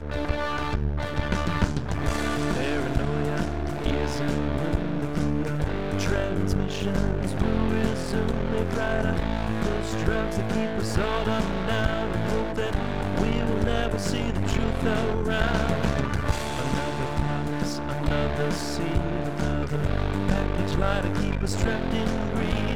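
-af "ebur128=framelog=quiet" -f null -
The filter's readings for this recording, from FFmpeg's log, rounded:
Integrated loudness:
  I:         -26.8 LUFS
  Threshold: -36.8 LUFS
Loudness range:
  LRA:         1.3 LU
  Threshold: -46.7 LUFS
  LRA low:   -27.4 LUFS
  LRA high:  -26.0 LUFS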